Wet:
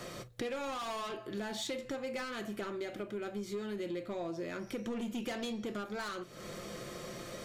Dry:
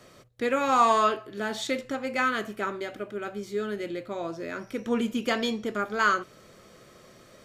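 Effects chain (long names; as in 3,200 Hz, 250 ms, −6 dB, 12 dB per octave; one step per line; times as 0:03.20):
soft clipping −26.5 dBFS, distortion −7 dB
convolution reverb, pre-delay 6 ms, DRR 10.5 dB
downward compressor 5 to 1, threshold −46 dBFS, peak gain reduction 17 dB
dynamic equaliser 1,400 Hz, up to −5 dB, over −59 dBFS, Q 1.4
level +8.5 dB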